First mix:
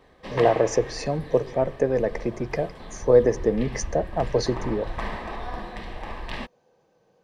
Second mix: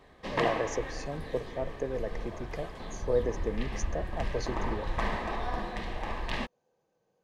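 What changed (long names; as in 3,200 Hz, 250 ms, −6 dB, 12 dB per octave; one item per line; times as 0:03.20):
speech −11.5 dB
master: remove notch filter 6,600 Hz, Q 8.8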